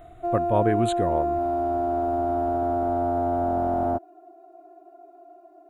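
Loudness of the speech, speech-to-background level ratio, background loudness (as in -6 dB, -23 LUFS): -26.5 LUFS, -1.0 dB, -25.5 LUFS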